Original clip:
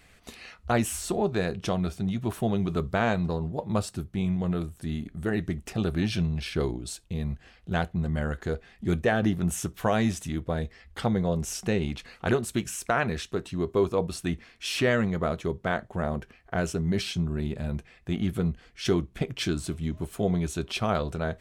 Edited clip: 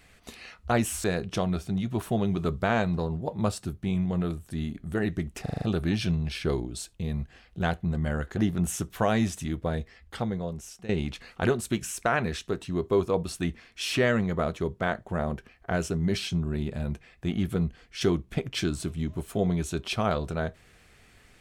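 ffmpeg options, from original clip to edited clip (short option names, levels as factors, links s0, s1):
-filter_complex "[0:a]asplit=9[s0][s1][s2][s3][s4][s5][s6][s7][s8];[s0]atrim=end=1.042[s9];[s1]atrim=start=1.348:end=5.772[s10];[s2]atrim=start=5.728:end=5.772[s11];[s3]atrim=start=5.728:end=5.772[s12];[s4]atrim=start=5.728:end=5.772[s13];[s5]atrim=start=5.728:end=5.772[s14];[s6]atrim=start=5.728:end=8.482[s15];[s7]atrim=start=9.208:end=11.73,asetpts=PTS-STARTPTS,afade=t=out:st=1.362:d=1.16:silence=0.149624[s16];[s8]atrim=start=11.73,asetpts=PTS-STARTPTS,afade=t=in:d=0.004:c=hsin:silence=0.149624[s17];[s9][s10]acrossfade=d=0.004:c1=hsin:c2=hsin[s18];[s18][s11]acrossfade=d=0.004:c1=hsin:c2=hsin[s19];[s19][s12]acrossfade=d=0.004:c1=hsin:c2=hsin[s20];[s20][s13]acrossfade=d=0.004:c1=hsin:c2=hsin[s21];[s21][s14]acrossfade=d=0.004:c1=hsin:c2=hsin[s22];[s22][s15]acrossfade=d=0.004:c1=hsin:c2=hsin[s23];[s16][s17]concat=n=2:v=0:a=1[s24];[s23][s24]acrossfade=d=0.004:c1=hsin:c2=hsin"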